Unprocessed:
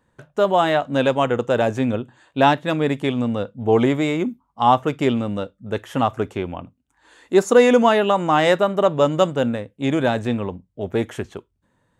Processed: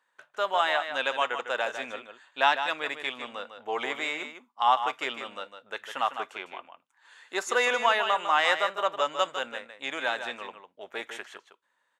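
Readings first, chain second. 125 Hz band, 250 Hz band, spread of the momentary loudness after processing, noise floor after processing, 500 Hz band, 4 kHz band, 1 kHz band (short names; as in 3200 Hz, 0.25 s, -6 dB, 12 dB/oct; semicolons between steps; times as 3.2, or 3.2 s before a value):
under -35 dB, -25.0 dB, 17 LU, -75 dBFS, -14.0 dB, -1.5 dB, -6.0 dB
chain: HPF 1200 Hz 12 dB/oct; high shelf 6500 Hz -10 dB; echo 0.153 s -9 dB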